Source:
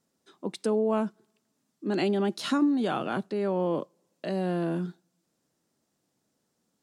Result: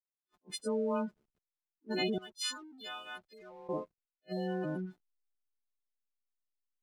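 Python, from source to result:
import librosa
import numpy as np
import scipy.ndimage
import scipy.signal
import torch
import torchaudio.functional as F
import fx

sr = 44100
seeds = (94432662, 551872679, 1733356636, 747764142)

y = fx.freq_snap(x, sr, grid_st=3)
y = fx.spec_gate(y, sr, threshold_db=-20, keep='strong')
y = fx.bandpass_q(y, sr, hz=5900.0, q=0.53, at=(2.18, 3.69))
y = fx.backlash(y, sr, play_db=-52.0)
y = fx.attack_slew(y, sr, db_per_s=520.0)
y = y * librosa.db_to_amplitude(-6.5)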